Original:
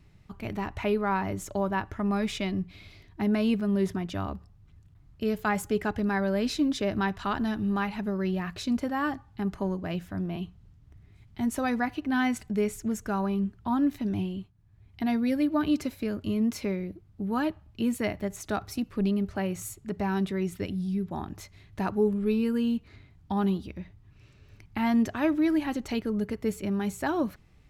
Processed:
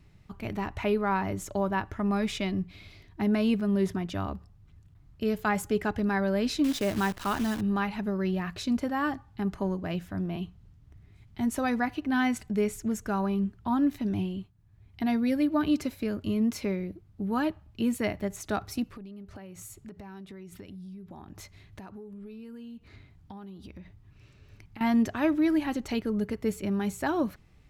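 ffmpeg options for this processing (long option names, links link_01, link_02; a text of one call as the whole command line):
ffmpeg -i in.wav -filter_complex "[0:a]asettb=1/sr,asplit=3[link_01][link_02][link_03];[link_01]atrim=end=6.644[link_04];[link_02]atrim=start=6.64:end=7.61,asetpts=PTS-STARTPTS,afade=type=in:duration=0.004:curve=qsin,afade=type=out:start_time=0.966:duration=0.004:curve=qsin,acrusher=bits=7:dc=4:mix=0:aa=0.000001[link_05];[link_03]atrim=start=7.606[link_06];[link_04][link_05]acrossfade=duration=0.004:curve1=hsin:curve2=qsin[link_07];[link_07][link_06]acrossfade=duration=0.004:curve1=qsin:curve2=hsin,asettb=1/sr,asplit=3[link_08][link_09][link_10];[link_08]atrim=end=18.844[link_11];[link_09]atrim=start=18.84:end=24.81,asetpts=PTS-STARTPTS,afade=type=in:duration=0.004:curve=qsin,afade=type=out:start_time=5.966:duration=0.004:curve=qsin,acompressor=threshold=-40dB:ratio=20:attack=3.2:release=140:knee=1:detection=peak[link_12];[link_10]atrim=start=24.806[link_13];[link_11][link_12]acrossfade=duration=0.004:curve1=hsin:curve2=qsin[link_14];[link_14][link_13]acrossfade=duration=0.004:curve1=qsin:curve2=hsin" out.wav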